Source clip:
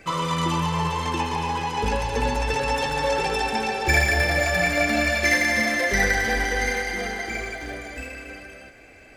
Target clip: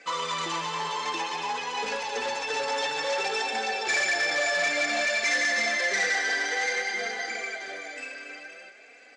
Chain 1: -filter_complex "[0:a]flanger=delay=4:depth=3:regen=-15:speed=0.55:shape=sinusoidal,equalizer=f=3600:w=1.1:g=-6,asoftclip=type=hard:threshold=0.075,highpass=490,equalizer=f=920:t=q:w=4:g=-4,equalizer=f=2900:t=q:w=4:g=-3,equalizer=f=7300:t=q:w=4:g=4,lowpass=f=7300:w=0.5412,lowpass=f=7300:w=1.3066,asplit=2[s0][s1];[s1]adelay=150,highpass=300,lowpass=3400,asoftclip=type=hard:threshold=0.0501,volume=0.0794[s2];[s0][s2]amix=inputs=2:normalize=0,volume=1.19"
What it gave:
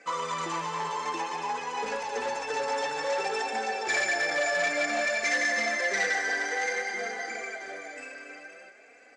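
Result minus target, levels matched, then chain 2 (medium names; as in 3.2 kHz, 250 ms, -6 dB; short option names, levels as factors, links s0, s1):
4 kHz band -4.5 dB
-filter_complex "[0:a]flanger=delay=4:depth=3:regen=-15:speed=0.55:shape=sinusoidal,equalizer=f=3600:w=1.1:g=4,asoftclip=type=hard:threshold=0.075,highpass=490,equalizer=f=920:t=q:w=4:g=-4,equalizer=f=2900:t=q:w=4:g=-3,equalizer=f=7300:t=q:w=4:g=4,lowpass=f=7300:w=0.5412,lowpass=f=7300:w=1.3066,asplit=2[s0][s1];[s1]adelay=150,highpass=300,lowpass=3400,asoftclip=type=hard:threshold=0.0501,volume=0.0794[s2];[s0][s2]amix=inputs=2:normalize=0,volume=1.19"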